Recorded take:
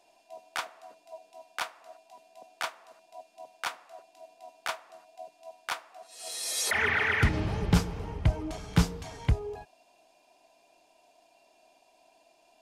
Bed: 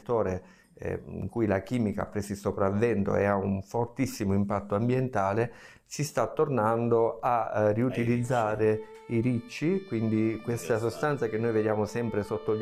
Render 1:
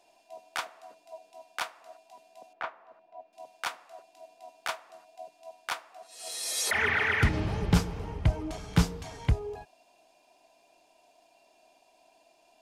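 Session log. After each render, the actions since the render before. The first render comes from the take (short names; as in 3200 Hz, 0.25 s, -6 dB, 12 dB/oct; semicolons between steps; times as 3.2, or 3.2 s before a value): 2.53–3.33 LPF 1700 Hz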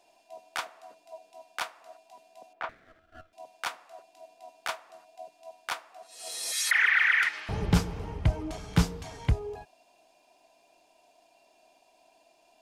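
2.69–3.33 minimum comb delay 0.53 ms; 6.52–7.49 resonant high-pass 1700 Hz, resonance Q 1.8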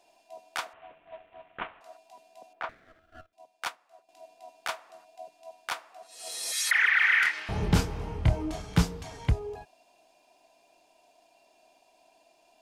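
0.73–1.81 CVSD 16 kbps; 3.26–4.09 upward expander, over -53 dBFS; 6.99–8.62 doubler 26 ms -4 dB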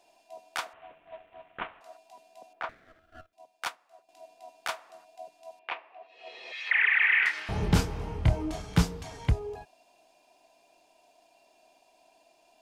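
5.59–7.26 speaker cabinet 290–2800 Hz, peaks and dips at 390 Hz +4 dB, 1400 Hz -9 dB, 2600 Hz +6 dB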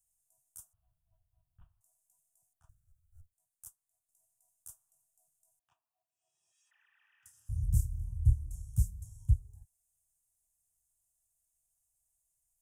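inverse Chebyshev band-stop 220–4500 Hz, stop band 40 dB; dynamic EQ 830 Hz, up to -5 dB, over -57 dBFS, Q 1.1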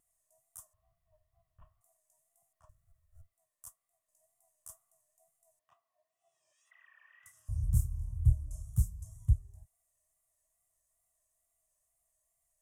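small resonant body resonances 630/1100/1900 Hz, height 17 dB, ringing for 30 ms; wow and flutter 79 cents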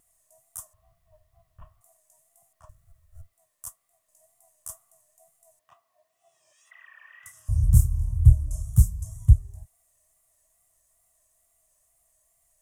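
gain +11.5 dB; limiter -3 dBFS, peak gain reduction 1 dB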